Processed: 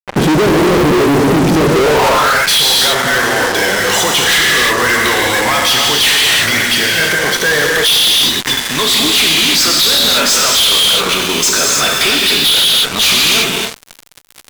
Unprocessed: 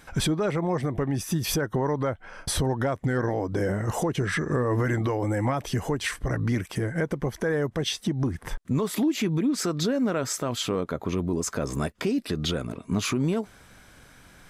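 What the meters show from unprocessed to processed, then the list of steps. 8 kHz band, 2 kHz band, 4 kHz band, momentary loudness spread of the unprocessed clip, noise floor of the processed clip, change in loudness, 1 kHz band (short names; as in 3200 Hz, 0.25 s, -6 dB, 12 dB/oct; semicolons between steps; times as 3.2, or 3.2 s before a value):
+21.5 dB, +23.0 dB, +27.0 dB, 4 LU, -37 dBFS, +17.5 dB, +18.0 dB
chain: non-linear reverb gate 0.36 s flat, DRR -0.5 dB; band-pass sweep 330 Hz -> 3600 Hz, 1.69–2.64; fuzz box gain 55 dB, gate -52 dBFS; gain +4 dB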